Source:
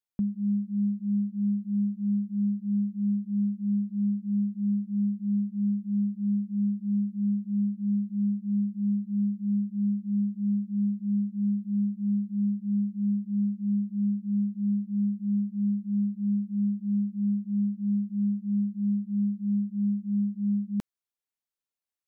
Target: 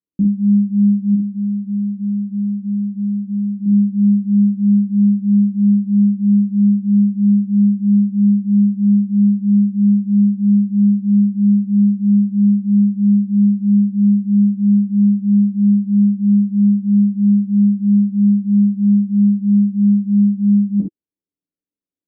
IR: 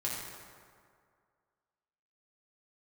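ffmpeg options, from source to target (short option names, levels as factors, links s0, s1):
-filter_complex "[0:a]asettb=1/sr,asplit=3[s0][s1][s2];[s0]atrim=end=1.144[s3];[s1]atrim=start=1.14:end=3.66,asetpts=PTS-STARTPTS,afade=t=in:d=0.004:c=qsin,afade=t=out:st=2.516:d=0.004:c=qsin,acompressor=threshold=0.0251:ratio=6[s4];[s2]atrim=start=3.656[s5];[s3][s4]acrossfade=d=0.004:c1=hsin:c2=qsin[s6];[s6][s5]acrossfade=d=0.004:c1=qsin:c2=hsin,lowpass=f=330:t=q:w=3.5[s7];[1:a]atrim=start_sample=2205,afade=t=out:st=0.17:d=0.01,atrim=end_sample=7938,asetrate=66150,aresample=44100[s8];[s7][s8]afir=irnorm=-1:irlink=0,volume=2.11"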